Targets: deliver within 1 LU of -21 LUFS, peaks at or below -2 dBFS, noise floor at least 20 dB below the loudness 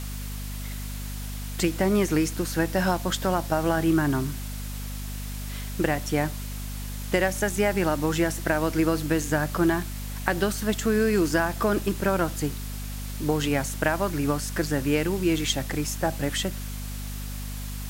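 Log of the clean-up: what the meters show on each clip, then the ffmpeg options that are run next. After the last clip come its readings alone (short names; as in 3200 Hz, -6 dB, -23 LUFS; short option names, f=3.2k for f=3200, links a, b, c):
hum 50 Hz; harmonics up to 250 Hz; hum level -31 dBFS; noise floor -34 dBFS; noise floor target -47 dBFS; loudness -26.5 LUFS; peak -4.5 dBFS; loudness target -21.0 LUFS
-> -af "bandreject=f=50:t=h:w=6,bandreject=f=100:t=h:w=6,bandreject=f=150:t=h:w=6,bandreject=f=200:t=h:w=6,bandreject=f=250:t=h:w=6"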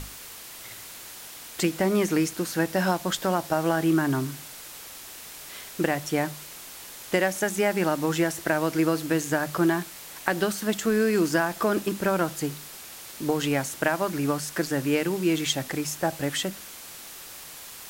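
hum none; noise floor -43 dBFS; noise floor target -46 dBFS
-> -af "afftdn=nr=6:nf=-43"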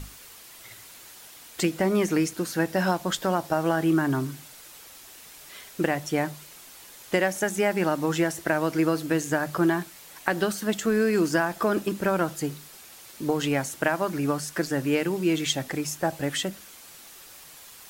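noise floor -48 dBFS; loudness -26.0 LUFS; peak -4.5 dBFS; loudness target -21.0 LUFS
-> -af "volume=5dB,alimiter=limit=-2dB:level=0:latency=1"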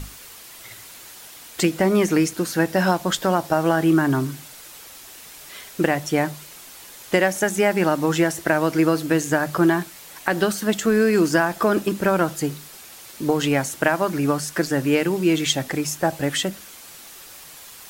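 loudness -21.0 LUFS; peak -2.0 dBFS; noise floor -43 dBFS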